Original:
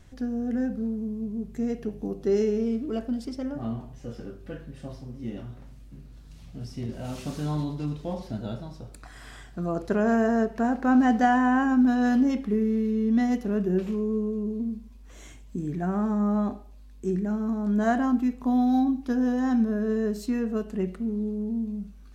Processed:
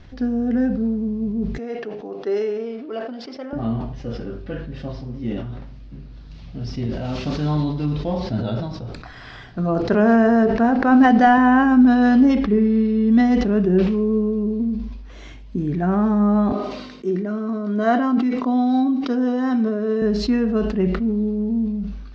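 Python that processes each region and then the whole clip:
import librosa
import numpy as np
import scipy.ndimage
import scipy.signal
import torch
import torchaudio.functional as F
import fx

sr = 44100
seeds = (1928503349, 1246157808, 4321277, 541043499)

y = fx.chain(x, sr, fx.highpass(hz=530.0, slope=12),
    fx.high_shelf(hz=4100.0, db=-10.5), at=(1.58, 3.53))
y = fx.chain(y, sr, fx.low_shelf(hz=68.0, db=9.5),
    fx.hum_notches(base_hz=50, count=9), at=(8.08, 11.38))
y = fx.chain(y, sr, fx.brickwall_lowpass(high_hz=5500.0),
    fx.room_flutter(wall_m=9.2, rt60_s=0.29), at=(12.51, 13.11))
y = fx.chain(y, sr, fx.highpass(hz=270.0, slope=12),
    fx.notch_comb(f0_hz=840.0), at=(16.52, 20.02))
y = scipy.signal.sosfilt(scipy.signal.butter(6, 5200.0, 'lowpass', fs=sr, output='sos'), y)
y = fx.sustainer(y, sr, db_per_s=47.0)
y = F.gain(torch.from_numpy(y), 7.5).numpy()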